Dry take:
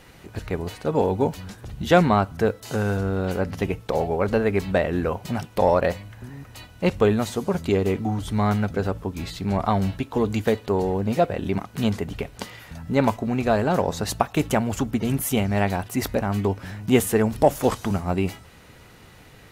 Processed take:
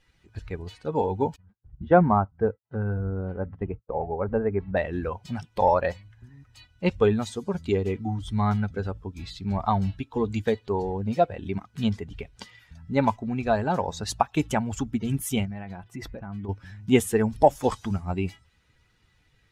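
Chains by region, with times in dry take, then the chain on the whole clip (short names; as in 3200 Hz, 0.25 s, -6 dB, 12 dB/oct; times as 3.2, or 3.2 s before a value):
1.36–4.77 LPF 1400 Hz + expander -31 dBFS
15.45–16.49 high shelf 3500 Hz -10.5 dB + comb 6 ms, depth 31% + compressor 12:1, threshold -24 dBFS
whole clip: per-bin expansion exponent 1.5; LPF 10000 Hz 12 dB/oct; dynamic EQ 850 Hz, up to +5 dB, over -41 dBFS, Q 3.6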